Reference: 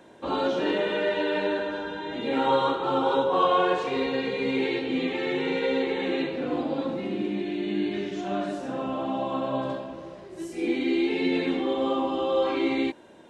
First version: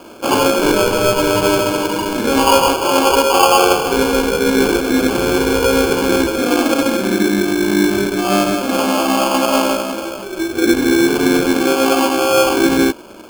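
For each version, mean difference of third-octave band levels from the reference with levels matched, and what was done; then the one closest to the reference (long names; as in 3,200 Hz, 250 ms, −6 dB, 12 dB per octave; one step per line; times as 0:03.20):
10.0 dB: Chebyshev high-pass filter 190 Hz, order 8
in parallel at +0.5 dB: speech leveller 0.5 s
on the sum: decimation without filtering 23×
level +6.5 dB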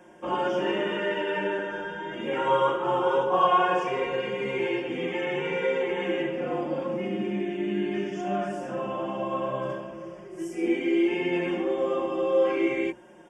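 3.0 dB: Butterworth band-reject 4,000 Hz, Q 2.3
mains-hum notches 60/120/180/240/300/360/420/480/540 Hz
comb filter 5.6 ms, depth 80%
level −2 dB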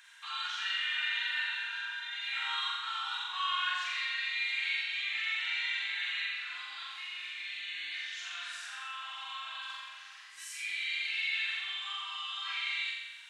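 18.5 dB: inverse Chebyshev high-pass filter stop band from 600 Hz, stop band 50 dB
flutter between parallel walls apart 7.5 metres, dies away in 0.94 s
in parallel at +2 dB: downward compressor, threshold −45 dBFS, peak gain reduction 16.5 dB
on the sum: level −3 dB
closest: second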